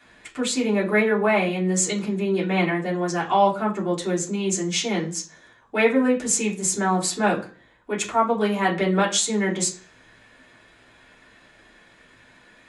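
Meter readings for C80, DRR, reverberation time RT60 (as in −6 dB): 17.5 dB, −6.0 dB, 0.40 s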